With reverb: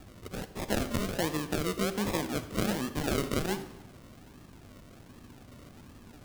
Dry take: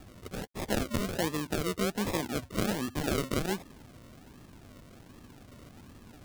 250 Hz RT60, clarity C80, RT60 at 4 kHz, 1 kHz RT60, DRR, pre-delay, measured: 1.2 s, 14.0 dB, 0.80 s, 1.0 s, 11.0 dB, 35 ms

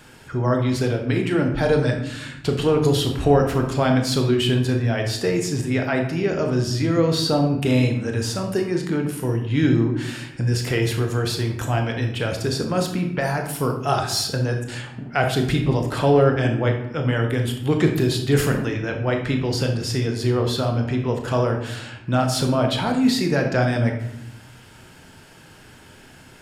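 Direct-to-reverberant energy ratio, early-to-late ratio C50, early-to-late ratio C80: 3.0 dB, 6.0 dB, 9.5 dB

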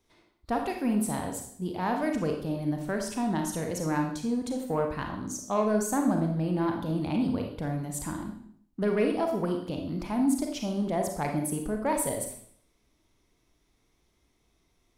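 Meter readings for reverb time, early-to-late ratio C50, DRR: 0.60 s, 5.5 dB, 2.5 dB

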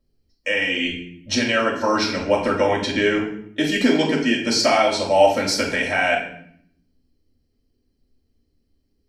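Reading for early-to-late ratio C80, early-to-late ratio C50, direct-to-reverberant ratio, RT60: 9.5 dB, 5.5 dB, -3.5 dB, 0.65 s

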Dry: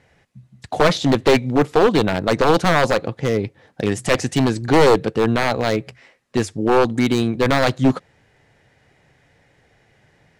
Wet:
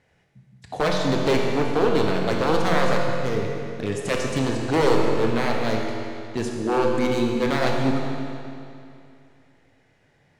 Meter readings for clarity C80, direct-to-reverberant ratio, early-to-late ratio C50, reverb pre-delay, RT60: 2.5 dB, 0.0 dB, 1.0 dB, 22 ms, 2.6 s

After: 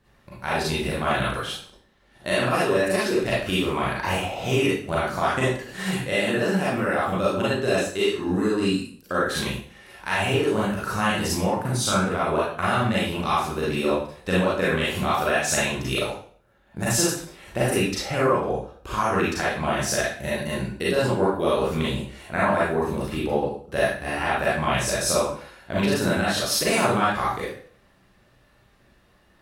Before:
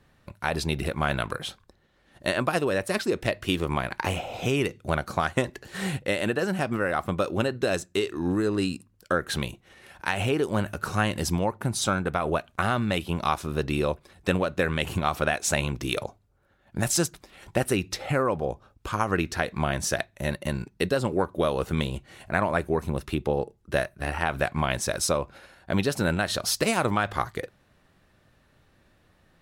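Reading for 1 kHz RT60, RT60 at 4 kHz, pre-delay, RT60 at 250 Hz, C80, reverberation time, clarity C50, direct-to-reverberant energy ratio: 0.50 s, 0.45 s, 29 ms, 0.45 s, 5.5 dB, 0.50 s, -0.5 dB, -8.0 dB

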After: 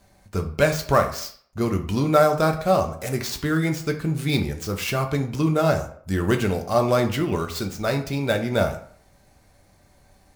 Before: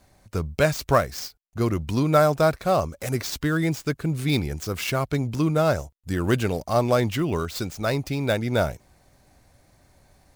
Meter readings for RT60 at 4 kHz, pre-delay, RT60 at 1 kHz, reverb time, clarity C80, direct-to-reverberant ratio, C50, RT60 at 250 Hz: 0.40 s, 5 ms, 0.55 s, 0.55 s, 15.0 dB, 4.0 dB, 10.5 dB, 0.55 s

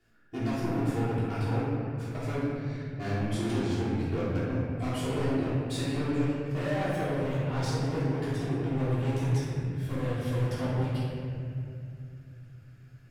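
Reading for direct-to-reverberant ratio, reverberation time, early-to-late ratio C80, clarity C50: -11.5 dB, 2.5 s, -0.5 dB, -3.0 dB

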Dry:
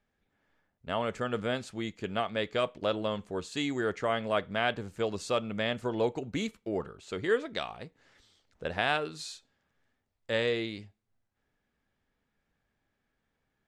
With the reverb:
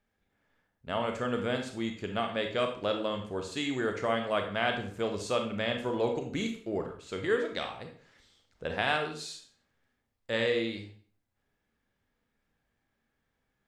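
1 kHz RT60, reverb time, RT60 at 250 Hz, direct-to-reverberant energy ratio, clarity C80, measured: 0.45 s, 0.45 s, 0.50 s, 4.0 dB, 12.0 dB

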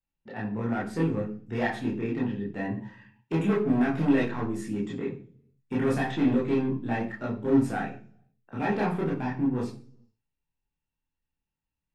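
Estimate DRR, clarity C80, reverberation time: -5.0 dB, 14.0 dB, 0.45 s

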